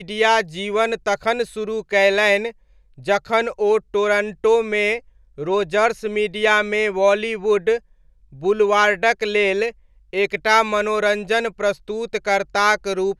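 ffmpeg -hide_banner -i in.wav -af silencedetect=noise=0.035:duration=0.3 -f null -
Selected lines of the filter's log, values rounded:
silence_start: 2.50
silence_end: 3.06 | silence_duration: 0.56
silence_start: 4.98
silence_end: 5.39 | silence_duration: 0.40
silence_start: 7.78
silence_end: 8.43 | silence_duration: 0.65
silence_start: 9.70
silence_end: 10.13 | silence_duration: 0.43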